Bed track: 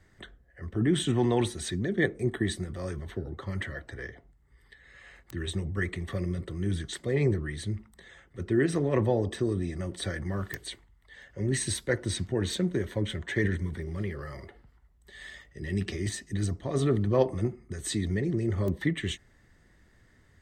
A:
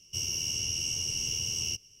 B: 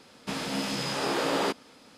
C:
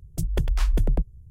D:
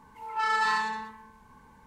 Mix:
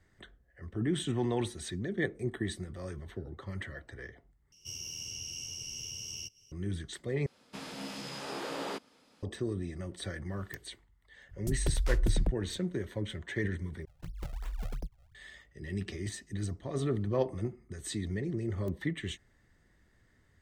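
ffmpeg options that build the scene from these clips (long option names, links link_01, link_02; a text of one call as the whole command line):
ffmpeg -i bed.wav -i cue0.wav -i cue1.wav -i cue2.wav -filter_complex "[3:a]asplit=2[link_01][link_02];[0:a]volume=-6dB[link_03];[1:a]acompressor=mode=upward:threshold=-44dB:ratio=2.5:attack=3.2:release=140:knee=2.83:detection=peak[link_04];[link_02]acrusher=samples=39:mix=1:aa=0.000001:lfo=1:lforange=62.4:lforate=2.8[link_05];[link_03]asplit=4[link_06][link_07][link_08][link_09];[link_06]atrim=end=4.524[link_10];[link_04]atrim=end=2,asetpts=PTS-STARTPTS,volume=-9.5dB[link_11];[link_07]atrim=start=6.516:end=7.264[link_12];[2:a]atrim=end=1.97,asetpts=PTS-STARTPTS,volume=-10.5dB[link_13];[link_08]atrim=start=9.226:end=13.854[link_14];[link_05]atrim=end=1.3,asetpts=PTS-STARTPTS,volume=-16dB[link_15];[link_09]atrim=start=15.146[link_16];[link_01]atrim=end=1.3,asetpts=PTS-STARTPTS,volume=-6.5dB,afade=type=in:duration=0.004:curve=hsin,afade=type=out:start_time=1.296:duration=0.004:curve=hsin,adelay=11290[link_17];[link_10][link_11]acrossfade=duration=0.004:curve1=hsin:curve2=hsin[link_18];[link_18][link_12]acrossfade=duration=0.004:curve1=hsin:curve2=hsin[link_19];[link_19][link_13]acrossfade=duration=0.004:curve1=hsin:curve2=hsin[link_20];[link_20][link_14]acrossfade=duration=0.004:curve1=hsin:curve2=hsin[link_21];[link_21][link_15]acrossfade=duration=0.004:curve1=hsin:curve2=hsin[link_22];[link_22][link_16]acrossfade=duration=0.004:curve1=hsin:curve2=hsin[link_23];[link_23][link_17]amix=inputs=2:normalize=0" out.wav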